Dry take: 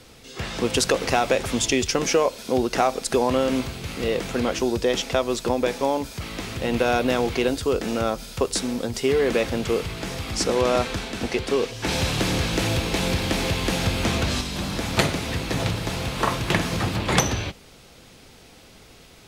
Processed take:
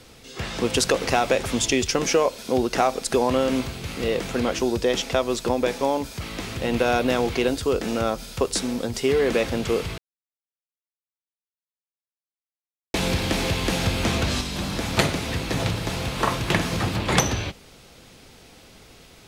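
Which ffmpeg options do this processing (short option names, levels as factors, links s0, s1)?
-filter_complex "[0:a]asplit=3[s0][s1][s2];[s0]atrim=end=9.98,asetpts=PTS-STARTPTS,afade=t=out:st=9.976:d=0.004:c=hsin[s3];[s1]atrim=start=9.98:end=12.94,asetpts=PTS-STARTPTS,volume=0[s4];[s2]atrim=start=12.94,asetpts=PTS-STARTPTS,afade=t=in:d=0.004:c=hsin[s5];[s3][s4][s5]concat=n=3:v=0:a=1"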